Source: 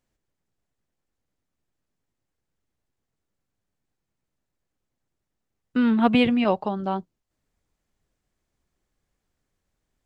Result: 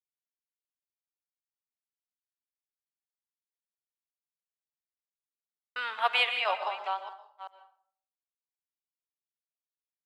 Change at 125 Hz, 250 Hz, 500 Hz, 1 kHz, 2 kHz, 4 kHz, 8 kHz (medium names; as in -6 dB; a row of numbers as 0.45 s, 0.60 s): under -40 dB, under -40 dB, -11.0 dB, -2.5 dB, +2.0 dB, +2.5 dB, no reading